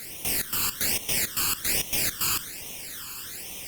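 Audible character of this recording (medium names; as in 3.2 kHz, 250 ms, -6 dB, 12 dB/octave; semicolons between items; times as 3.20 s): a quantiser's noise floor 6-bit, dither triangular; phasing stages 12, 1.2 Hz, lowest notch 620–1500 Hz; Opus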